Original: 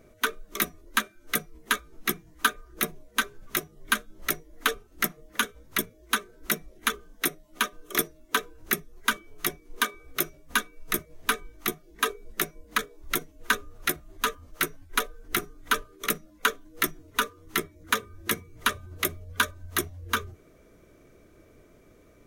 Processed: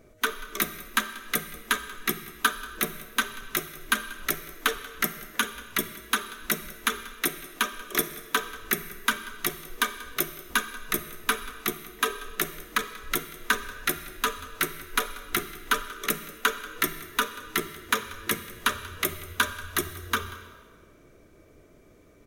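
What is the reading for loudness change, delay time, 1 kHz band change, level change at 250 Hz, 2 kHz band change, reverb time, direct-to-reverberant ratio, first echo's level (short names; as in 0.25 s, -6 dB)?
+0.5 dB, 0.186 s, +0.5 dB, +0.5 dB, +0.5 dB, 1.6 s, 10.0 dB, -19.5 dB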